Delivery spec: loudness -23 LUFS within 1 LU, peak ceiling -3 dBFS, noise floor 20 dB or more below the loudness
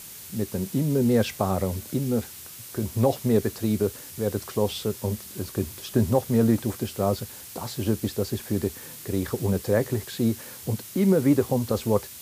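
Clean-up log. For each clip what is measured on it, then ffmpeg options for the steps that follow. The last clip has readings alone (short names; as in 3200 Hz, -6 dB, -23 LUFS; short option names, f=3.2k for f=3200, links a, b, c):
noise floor -42 dBFS; noise floor target -46 dBFS; loudness -26.0 LUFS; peak -9.0 dBFS; loudness target -23.0 LUFS
-> -af "afftdn=nr=6:nf=-42"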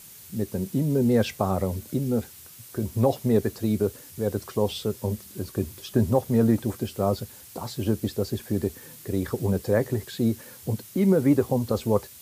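noise floor -47 dBFS; loudness -26.0 LUFS; peak -9.0 dBFS; loudness target -23.0 LUFS
-> -af "volume=3dB"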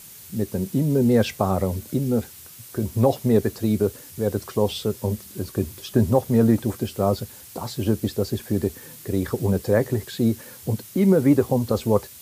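loudness -23.0 LUFS; peak -6.0 dBFS; noise floor -44 dBFS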